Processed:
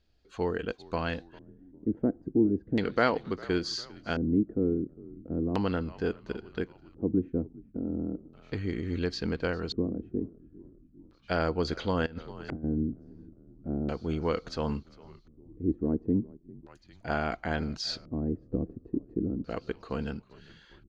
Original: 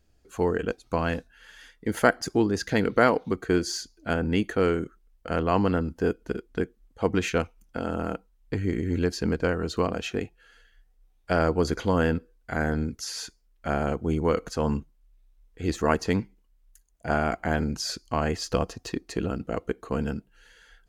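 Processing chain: frequency-shifting echo 0.401 s, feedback 60%, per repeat -55 Hz, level -21.5 dB; 12.06–12.64 negative-ratio compressor -31 dBFS, ratio -0.5; LFO low-pass square 0.36 Hz 300–4100 Hz; gain -5.5 dB

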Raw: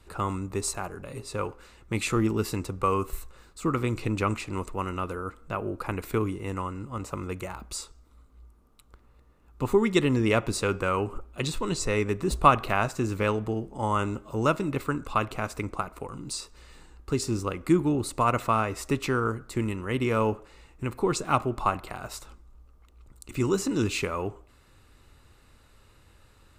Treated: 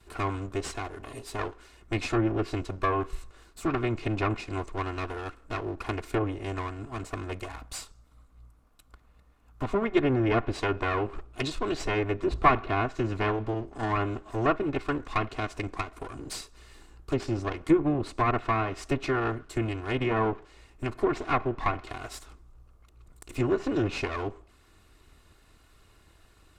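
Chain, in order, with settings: minimum comb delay 2.8 ms; treble ducked by the level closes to 2000 Hz, closed at -21.5 dBFS; 7.48–9.93 bell 370 Hz -13.5 dB 0.24 oct

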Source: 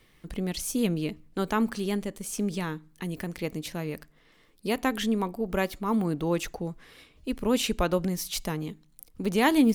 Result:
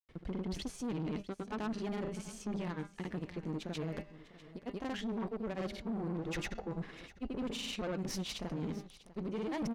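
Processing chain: G.711 law mismatch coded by A; LPF 6600 Hz 12 dB/oct; high shelf 2500 Hz -9.5 dB; de-hum 200.6 Hz, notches 34; reverse; compressor 5:1, threshold -44 dBFS, peak gain reduction 23.5 dB; reverse; grains 0.1 s, grains 20/s, spray 0.1 s, pitch spread up and down by 0 st; tube stage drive 47 dB, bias 0.4; echo 0.648 s -17.5 dB; gain +14 dB

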